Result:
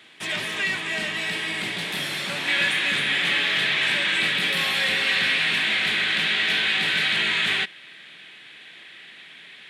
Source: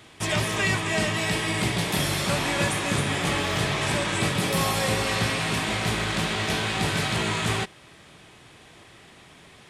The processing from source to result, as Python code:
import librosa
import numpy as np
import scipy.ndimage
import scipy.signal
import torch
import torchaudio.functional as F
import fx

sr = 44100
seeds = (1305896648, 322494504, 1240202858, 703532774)

y = scipy.signal.sosfilt(scipy.signal.butter(4, 160.0, 'highpass', fs=sr, output='sos'), x)
y = 10.0 ** (-19.5 / 20.0) * np.tanh(y / 10.0 ** (-19.5 / 20.0))
y = fx.band_shelf(y, sr, hz=2500.0, db=fx.steps((0.0, 9.0), (2.47, 15.5)), octaves=1.7)
y = y * 10.0 ** (-6.0 / 20.0)